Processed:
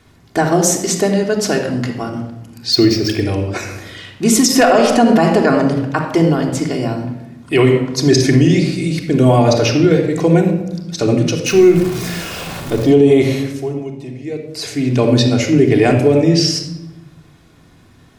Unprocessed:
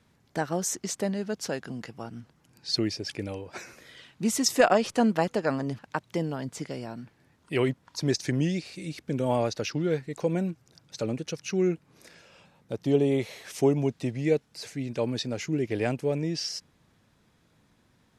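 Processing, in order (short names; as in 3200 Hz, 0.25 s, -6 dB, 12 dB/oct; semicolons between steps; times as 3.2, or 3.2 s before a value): 11.46–12.84 zero-crossing step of -37.5 dBFS; 13.41–14.5 dip -16 dB, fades 0.43 s exponential; shoebox room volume 3800 m³, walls furnished, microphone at 3.3 m; maximiser +14 dB; 2.72–3.21 decimation joined by straight lines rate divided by 2×; gain -1 dB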